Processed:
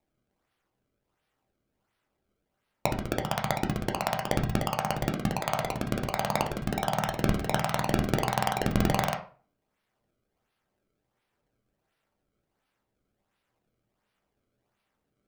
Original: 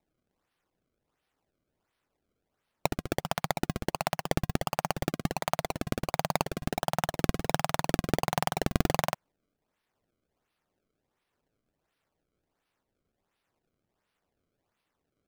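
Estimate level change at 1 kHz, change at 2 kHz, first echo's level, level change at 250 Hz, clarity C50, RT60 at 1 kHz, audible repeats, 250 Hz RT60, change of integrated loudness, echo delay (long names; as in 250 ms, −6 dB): +2.5 dB, +2.0 dB, no echo audible, +3.0 dB, 11.0 dB, 0.40 s, no echo audible, 0.40 s, +2.0 dB, no echo audible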